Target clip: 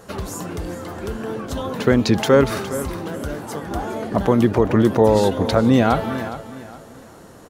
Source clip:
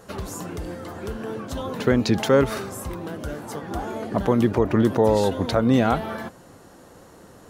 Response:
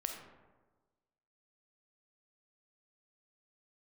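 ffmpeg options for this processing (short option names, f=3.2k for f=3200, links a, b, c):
-af "aecho=1:1:413|826|1239:0.211|0.0697|0.023,volume=3.5dB"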